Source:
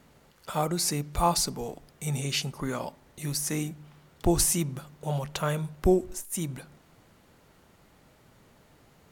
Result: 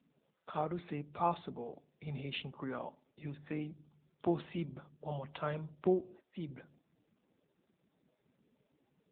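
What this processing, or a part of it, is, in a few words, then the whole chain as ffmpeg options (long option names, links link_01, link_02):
mobile call with aggressive noise cancelling: -af "highpass=170,afftdn=noise_reduction=27:noise_floor=-52,volume=-7dB" -ar 8000 -c:a libopencore_amrnb -b:a 7950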